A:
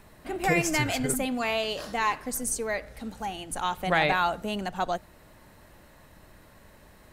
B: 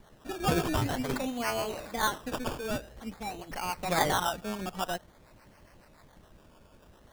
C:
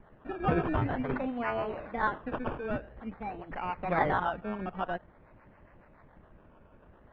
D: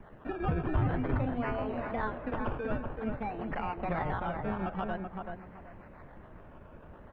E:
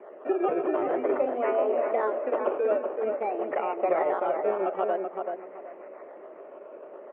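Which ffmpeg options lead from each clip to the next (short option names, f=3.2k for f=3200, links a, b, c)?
-filter_complex "[0:a]acrossover=split=600[a][b];[a]aeval=exprs='val(0)*(1-0.7/2+0.7/2*cos(2*PI*7.1*n/s))':c=same[c];[b]aeval=exprs='val(0)*(1-0.7/2-0.7/2*cos(2*PI*7.1*n/s))':c=same[d];[c][d]amix=inputs=2:normalize=0,acrusher=samples=17:mix=1:aa=0.000001:lfo=1:lforange=10.2:lforate=0.49"
-af "lowpass=f=2.2k:w=0.5412,lowpass=f=2.2k:w=1.3066"
-filter_complex "[0:a]acrossover=split=130[a][b];[b]acompressor=threshold=-38dB:ratio=6[c];[a][c]amix=inputs=2:normalize=0,asplit=2[d][e];[e]adelay=382,lowpass=f=1.7k:p=1,volume=-4dB,asplit=2[f][g];[g]adelay=382,lowpass=f=1.7k:p=1,volume=0.27,asplit=2[h][i];[i]adelay=382,lowpass=f=1.7k:p=1,volume=0.27,asplit=2[j][k];[k]adelay=382,lowpass=f=1.7k:p=1,volume=0.27[l];[d][f][h][j][l]amix=inputs=5:normalize=0,volume=5dB"
-af "highpass=f=360:w=0.5412,highpass=f=360:w=1.3066,equalizer=f=390:t=q:w=4:g=9,equalizer=f=590:t=q:w=4:g=9,equalizer=f=930:t=q:w=4:g=-4,equalizer=f=1.6k:t=q:w=4:g=-9,lowpass=f=2.4k:w=0.5412,lowpass=f=2.4k:w=1.3066,volume=6.5dB"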